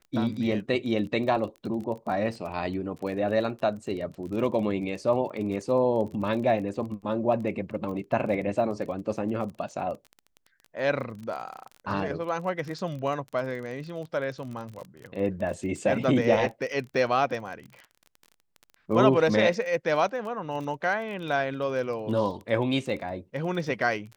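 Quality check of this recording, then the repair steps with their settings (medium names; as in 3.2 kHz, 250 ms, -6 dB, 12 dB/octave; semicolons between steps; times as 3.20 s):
crackle 27 per s -35 dBFS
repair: de-click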